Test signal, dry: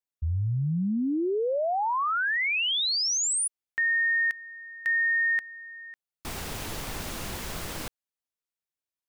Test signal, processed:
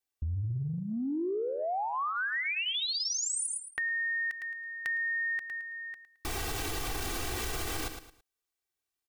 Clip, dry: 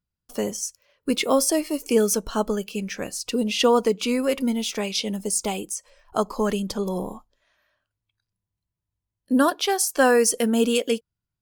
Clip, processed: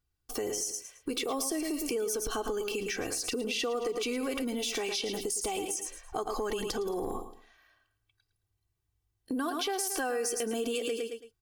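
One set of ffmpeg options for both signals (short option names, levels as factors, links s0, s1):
-filter_complex "[0:a]aecho=1:1:2.6:0.79,asplit=2[s0][s1];[s1]aecho=0:1:109|218|327:0.251|0.0728|0.0211[s2];[s0][s2]amix=inputs=2:normalize=0,acompressor=threshold=0.02:ratio=6:attack=7.4:release=34:knee=1:detection=rms,volume=1.26"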